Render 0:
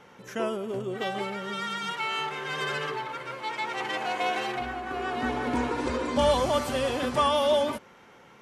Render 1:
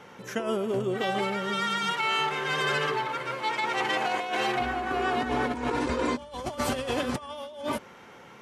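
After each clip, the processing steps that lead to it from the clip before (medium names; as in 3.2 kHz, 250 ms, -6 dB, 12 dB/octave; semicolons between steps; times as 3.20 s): high-pass 44 Hz; compressor with a negative ratio -30 dBFS, ratio -0.5; trim +2 dB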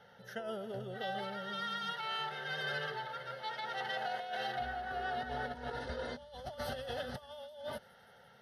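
static phaser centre 1.6 kHz, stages 8; feedback echo behind a high-pass 170 ms, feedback 83%, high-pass 5.4 kHz, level -18 dB; trim -8 dB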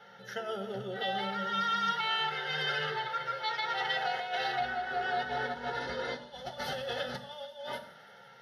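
reverberation RT60 1.0 s, pre-delay 3 ms, DRR 4.5 dB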